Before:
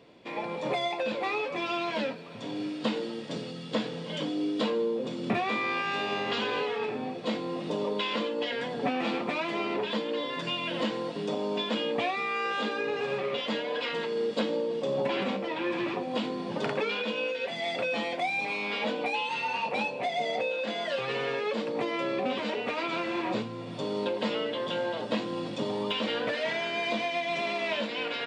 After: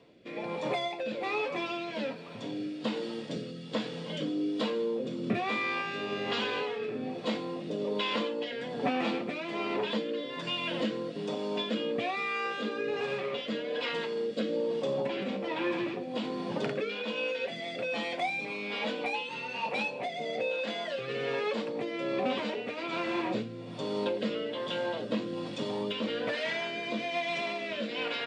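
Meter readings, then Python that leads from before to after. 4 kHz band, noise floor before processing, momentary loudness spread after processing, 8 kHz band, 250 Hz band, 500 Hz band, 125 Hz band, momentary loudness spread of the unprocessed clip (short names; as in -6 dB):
-2.5 dB, -38 dBFS, 5 LU, n/a, -1.5 dB, -2.0 dB, -1.5 dB, 4 LU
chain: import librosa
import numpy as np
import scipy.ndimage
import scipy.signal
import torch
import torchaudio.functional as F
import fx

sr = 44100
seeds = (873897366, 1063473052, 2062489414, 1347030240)

y = fx.rotary(x, sr, hz=1.2)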